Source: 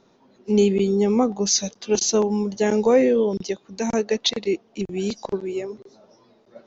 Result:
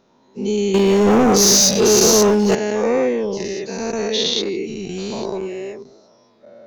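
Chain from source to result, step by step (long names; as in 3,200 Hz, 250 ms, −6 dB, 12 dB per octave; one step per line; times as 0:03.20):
every bin's largest magnitude spread in time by 240 ms
0:00.74–0:02.55: leveller curve on the samples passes 3
level −5.5 dB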